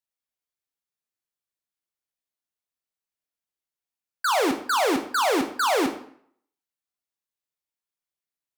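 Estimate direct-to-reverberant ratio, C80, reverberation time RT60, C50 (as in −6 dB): 5.5 dB, 13.0 dB, 0.60 s, 10.0 dB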